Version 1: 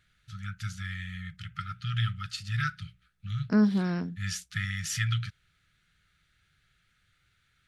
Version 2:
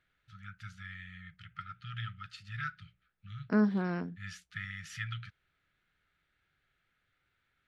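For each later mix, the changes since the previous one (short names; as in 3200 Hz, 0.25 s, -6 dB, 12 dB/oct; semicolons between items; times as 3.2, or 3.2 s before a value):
first voice -5.5 dB; master: add tone controls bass -7 dB, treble -14 dB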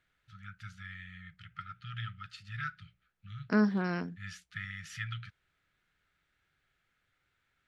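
second voice: add high shelf 2000 Hz +10 dB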